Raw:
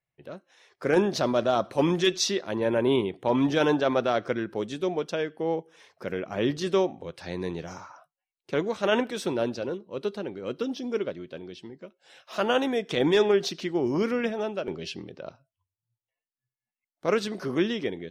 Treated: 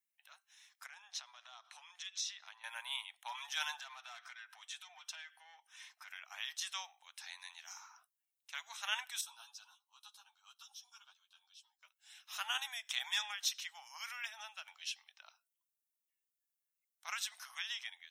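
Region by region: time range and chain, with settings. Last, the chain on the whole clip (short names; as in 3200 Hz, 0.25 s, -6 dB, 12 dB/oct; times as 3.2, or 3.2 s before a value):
0.86–2.64 LPF 5700 Hz + compressor 16:1, threshold -32 dBFS
3.81–6.11 overdrive pedal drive 15 dB, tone 3400 Hz, clips at -11.5 dBFS + compressor 2.5:1, threshold -36 dBFS + notch comb 280 Hz
9.21–11.83 low shelf 490 Hz -11.5 dB + fixed phaser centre 540 Hz, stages 6 + ensemble effect
whole clip: elliptic high-pass 800 Hz, stop band 50 dB; differentiator; notch 4600 Hz, Q 5.5; gain +3.5 dB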